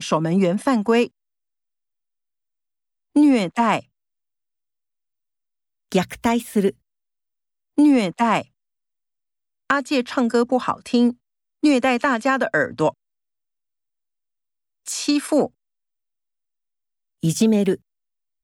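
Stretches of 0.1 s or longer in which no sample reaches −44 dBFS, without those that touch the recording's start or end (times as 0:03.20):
0:01.08–0:03.15
0:03.83–0:05.92
0:06.72–0:07.78
0:08.44–0:09.70
0:11.14–0:11.63
0:12.91–0:14.86
0:15.48–0:17.23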